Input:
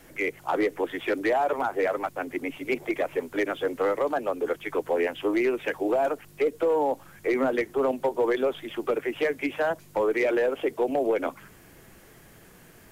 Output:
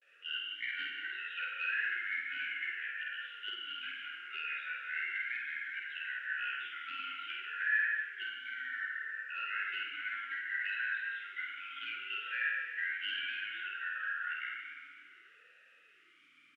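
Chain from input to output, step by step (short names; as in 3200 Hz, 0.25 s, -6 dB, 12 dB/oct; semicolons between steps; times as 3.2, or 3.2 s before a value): four-band scrambler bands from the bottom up 4123; vibrato 0.52 Hz 67 cents; varispeed -22%; doubler 50 ms -3.5 dB; reverb RT60 2.6 s, pre-delay 27 ms, DRR -1.5 dB; vowel sweep e-i 0.64 Hz; gain -1 dB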